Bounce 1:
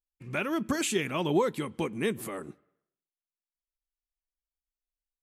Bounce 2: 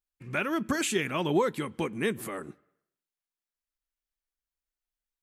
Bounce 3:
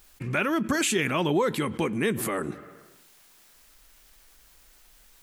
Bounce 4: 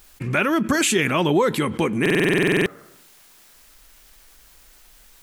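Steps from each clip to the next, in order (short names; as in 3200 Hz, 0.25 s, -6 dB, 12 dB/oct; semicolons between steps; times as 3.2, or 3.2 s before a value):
bell 1600 Hz +4 dB 0.77 oct
fast leveller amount 50%
stuck buffer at 2.01, samples 2048, times 13; gain +5.5 dB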